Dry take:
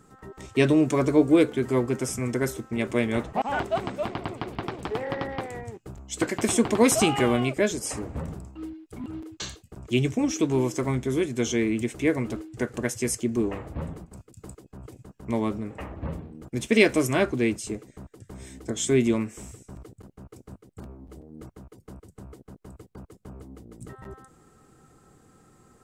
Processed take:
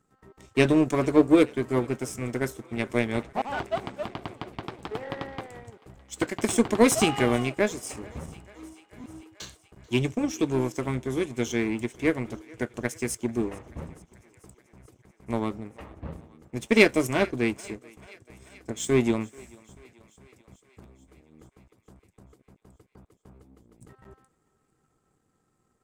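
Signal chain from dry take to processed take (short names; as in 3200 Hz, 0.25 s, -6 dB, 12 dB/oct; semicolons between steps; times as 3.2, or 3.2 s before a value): power-law curve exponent 1.4; thinning echo 0.437 s, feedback 71%, high-pass 380 Hz, level -23 dB; gain +3.5 dB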